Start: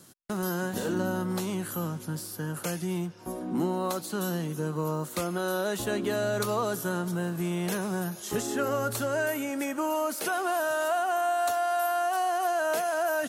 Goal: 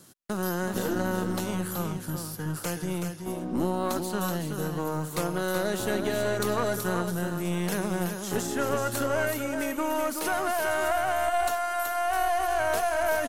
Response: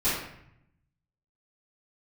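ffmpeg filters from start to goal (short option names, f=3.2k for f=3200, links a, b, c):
-af "aecho=1:1:376:0.473,aeval=exprs='0.188*(cos(1*acos(clip(val(0)/0.188,-1,1)))-cos(1*PI/2))+0.0266*(cos(4*acos(clip(val(0)/0.188,-1,1)))-cos(4*PI/2))':c=same"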